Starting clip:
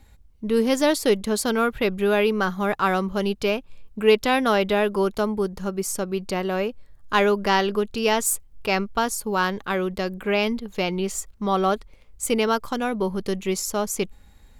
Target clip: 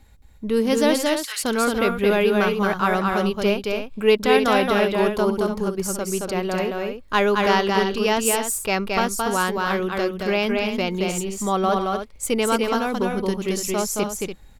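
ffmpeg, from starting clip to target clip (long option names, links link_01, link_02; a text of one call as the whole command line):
ffmpeg -i in.wav -filter_complex "[0:a]asettb=1/sr,asplit=3[link_01][link_02][link_03];[link_01]atrim=end=0.964[link_04];[link_02]atrim=start=0.96:end=1.43,asetpts=PTS-STARTPTS,afade=type=in:duration=0.004:curve=qsin,afade=type=out:start_time=0.466:duration=0.004:curve=qsin,highpass=frequency=1300:width=0.5412,highpass=frequency=1300:width=1.3066[link_05];[link_03]atrim=start=1.426[link_06];[link_04][link_05]acrossfade=duration=0.004:curve1=hsin:curve2=qsin[link_07];[link_07][link_06]acrossfade=duration=0.004:curve1=qsin:curve2=hsin,asplit=2[link_08][link_09];[link_09]aecho=0:1:221.6|288.6:0.708|0.355[link_10];[link_08][link_10]amix=inputs=2:normalize=0" out.wav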